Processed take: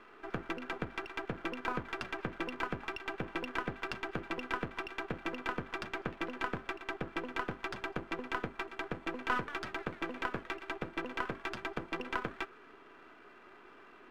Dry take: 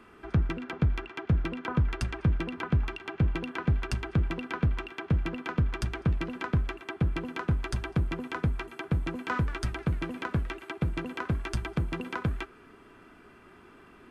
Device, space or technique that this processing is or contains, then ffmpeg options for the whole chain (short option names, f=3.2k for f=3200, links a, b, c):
crystal radio: -af "highpass=380,lowpass=3.2k,aeval=exprs='if(lt(val(0),0),0.447*val(0),val(0))':c=same,volume=2.5dB"